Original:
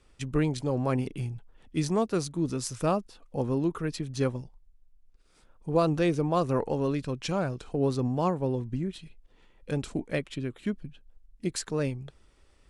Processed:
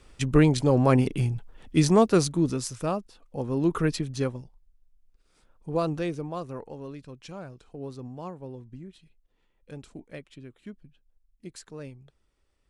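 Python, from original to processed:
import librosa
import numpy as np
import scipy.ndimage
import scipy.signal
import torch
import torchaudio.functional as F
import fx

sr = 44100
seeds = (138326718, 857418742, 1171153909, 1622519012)

y = fx.gain(x, sr, db=fx.line((2.27, 7.5), (2.81, -2.0), (3.48, -2.0), (3.79, 8.0), (4.34, -2.5), (5.87, -2.5), (6.63, -11.5)))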